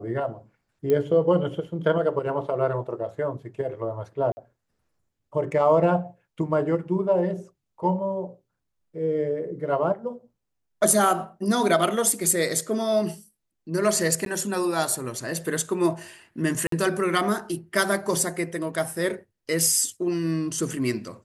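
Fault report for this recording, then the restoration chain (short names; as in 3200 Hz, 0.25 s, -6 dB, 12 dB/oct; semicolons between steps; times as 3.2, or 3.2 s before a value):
0.9 pop -14 dBFS
4.32–4.37 gap 50 ms
14.25–14.26 gap 12 ms
16.67–16.72 gap 53 ms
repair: de-click; interpolate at 4.32, 50 ms; interpolate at 14.25, 12 ms; interpolate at 16.67, 53 ms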